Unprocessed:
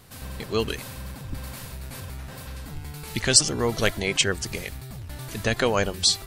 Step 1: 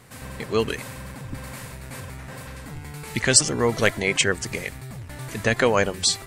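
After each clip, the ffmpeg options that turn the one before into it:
ffmpeg -i in.wav -af "equalizer=frequency=125:width_type=o:width=1:gain=7,equalizer=frequency=250:width_type=o:width=1:gain=6,equalizer=frequency=500:width_type=o:width=1:gain=7,equalizer=frequency=1000:width_type=o:width=1:gain=6,equalizer=frequency=2000:width_type=o:width=1:gain=10,equalizer=frequency=8000:width_type=o:width=1:gain=8,volume=-6dB" out.wav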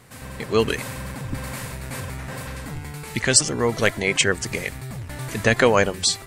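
ffmpeg -i in.wav -af "dynaudnorm=framelen=120:gausssize=9:maxgain=5dB" out.wav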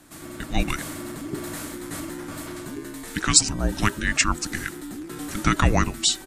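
ffmpeg -i in.wav -af "highshelf=frequency=6500:gain=5,afreqshift=-420,aresample=32000,aresample=44100,volume=-2.5dB" out.wav

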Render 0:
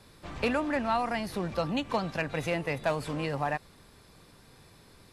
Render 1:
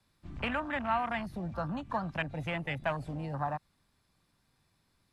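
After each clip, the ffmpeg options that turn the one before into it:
ffmpeg -i in.wav -filter_complex "[0:a]afwtdn=0.02,equalizer=frequency=450:width_type=o:width=0.65:gain=-8.5,acrossover=split=210|560|5900[link_01][link_02][link_03][link_04];[link_02]acompressor=threshold=-46dB:ratio=6[link_05];[link_01][link_05][link_03][link_04]amix=inputs=4:normalize=0" out.wav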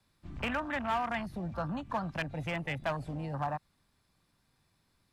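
ffmpeg -i in.wav -af "asoftclip=type=hard:threshold=-25.5dB" out.wav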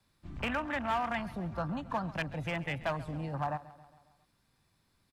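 ffmpeg -i in.wav -af "aecho=1:1:136|272|408|544|680:0.126|0.0718|0.0409|0.0233|0.0133" out.wav

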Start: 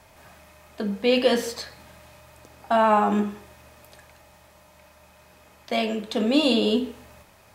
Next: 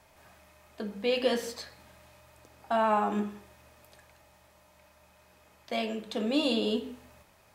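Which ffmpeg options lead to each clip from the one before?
ffmpeg -i in.wav -af "bandreject=frequency=50:width_type=h:width=6,bandreject=frequency=100:width_type=h:width=6,bandreject=frequency=150:width_type=h:width=6,bandreject=frequency=200:width_type=h:width=6,bandreject=frequency=250:width_type=h:width=6,volume=-7dB" out.wav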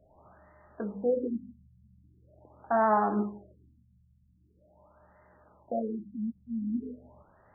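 ffmpeg -i in.wav -af "afftfilt=real='re*lt(b*sr/1024,210*pow(2100/210,0.5+0.5*sin(2*PI*0.43*pts/sr)))':imag='im*lt(b*sr/1024,210*pow(2100/210,0.5+0.5*sin(2*PI*0.43*pts/sr)))':win_size=1024:overlap=0.75,volume=1.5dB" out.wav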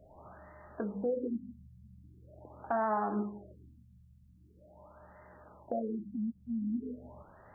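ffmpeg -i in.wav -af "acompressor=threshold=-42dB:ratio=2,volume=4.5dB" out.wav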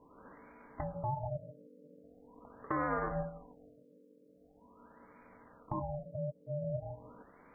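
ffmpeg -i in.wav -af "aeval=exprs='val(0)*sin(2*PI*370*n/s)':channel_layout=same" out.wav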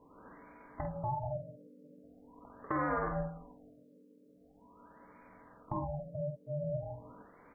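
ffmpeg -i in.wav -filter_complex "[0:a]asplit=2[link_01][link_02];[link_02]adelay=48,volume=-6.5dB[link_03];[link_01][link_03]amix=inputs=2:normalize=0" out.wav

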